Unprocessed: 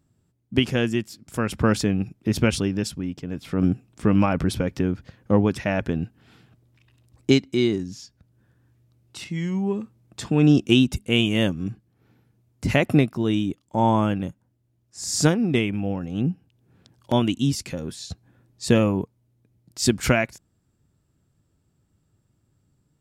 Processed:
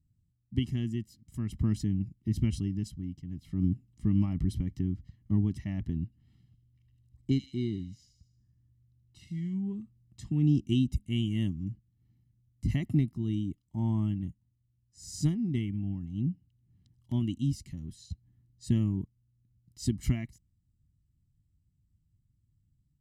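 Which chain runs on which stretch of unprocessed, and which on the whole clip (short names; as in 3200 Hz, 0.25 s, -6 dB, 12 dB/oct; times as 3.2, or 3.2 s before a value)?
6.04–9.54 high shelf 3100 Hz -5.5 dB + thin delay 77 ms, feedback 51%, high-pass 3000 Hz, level -5.5 dB
whole clip: passive tone stack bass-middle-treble 10-0-1; comb 1 ms, depth 99%; dynamic EQ 320 Hz, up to +6 dB, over -46 dBFS, Q 1.1; gain +1.5 dB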